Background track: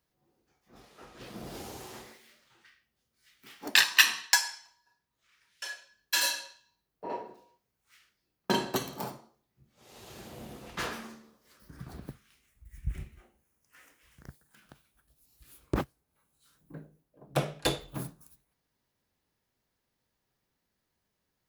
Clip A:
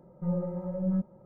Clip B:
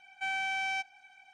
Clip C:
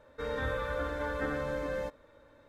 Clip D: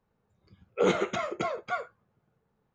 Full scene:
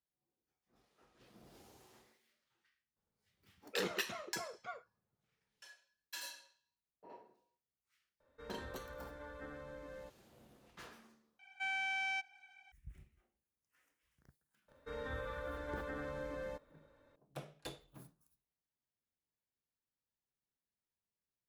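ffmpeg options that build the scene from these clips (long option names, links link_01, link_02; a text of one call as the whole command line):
ffmpeg -i bed.wav -i cue0.wav -i cue1.wav -i cue2.wav -i cue3.wav -filter_complex "[3:a]asplit=2[link_01][link_02];[0:a]volume=-19dB[link_03];[2:a]equalizer=frequency=2200:width=0.73:gain=4.5[link_04];[link_02]alimiter=limit=-24dB:level=0:latency=1:release=71[link_05];[link_03]asplit=2[link_06][link_07];[link_06]atrim=end=11.394[link_08];[link_04]atrim=end=1.33,asetpts=PTS-STARTPTS,volume=-8.5dB[link_09];[link_07]atrim=start=12.716[link_10];[4:a]atrim=end=2.74,asetpts=PTS-STARTPTS,volume=-15dB,afade=type=in:duration=0.004:curve=hsin,afade=type=out:start_time=2.736:duration=0.004:curve=hsin,adelay=2960[link_11];[link_01]atrim=end=2.48,asetpts=PTS-STARTPTS,volume=-16dB,afade=type=in:duration=0.004:curve=hsin,afade=type=out:start_time=2.476:duration=0.004:curve=hsin,adelay=8200[link_12];[link_05]atrim=end=2.48,asetpts=PTS-STARTPTS,volume=-9dB,afade=type=in:duration=0.004:curve=hsin,afade=type=out:start_time=2.476:duration=0.004:curve=hsin,adelay=14680[link_13];[link_08][link_09]acrossfade=duration=0.004:curve1=hsin:curve2=hsin[link_14];[link_14][link_10]acrossfade=duration=0.004:curve1=hsin:curve2=hsin[link_15];[link_15][link_11][link_12][link_13]amix=inputs=4:normalize=0" out.wav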